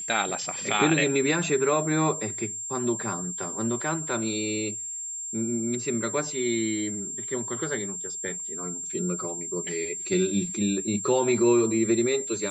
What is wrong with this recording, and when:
whine 7.4 kHz -32 dBFS

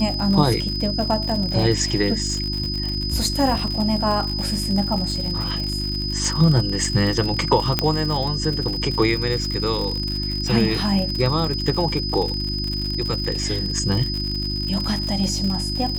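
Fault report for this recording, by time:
crackle 95 per s -25 dBFS
hum 50 Hz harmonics 7 -27 dBFS
whine 5 kHz -26 dBFS
7.79 s: pop -3 dBFS

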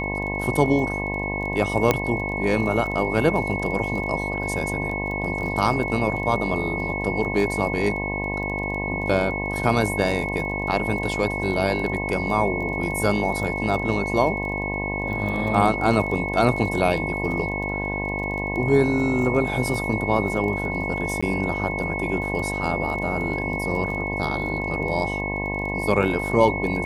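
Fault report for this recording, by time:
buzz 50 Hz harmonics 21 -29 dBFS
crackle 18 per s -30 dBFS
whine 2.2 kHz -28 dBFS
1.91 s: pop -4 dBFS
21.21–21.23 s: dropout 15 ms

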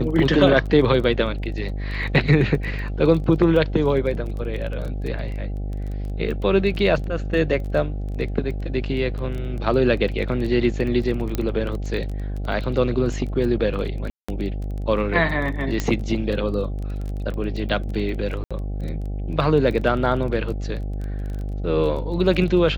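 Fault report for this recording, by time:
buzz 50 Hz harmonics 16 -27 dBFS
crackle 19 per s -29 dBFS
11.35 s: pop -10 dBFS
14.10–14.29 s: dropout 185 ms
15.80 s: pop -9 dBFS
18.44–18.51 s: dropout 66 ms

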